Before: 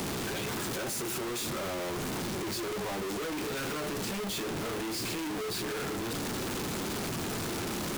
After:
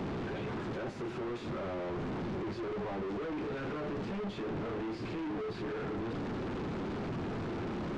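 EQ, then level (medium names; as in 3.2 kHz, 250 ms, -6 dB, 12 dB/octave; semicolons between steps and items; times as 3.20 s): tape spacing loss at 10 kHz 38 dB; 0.0 dB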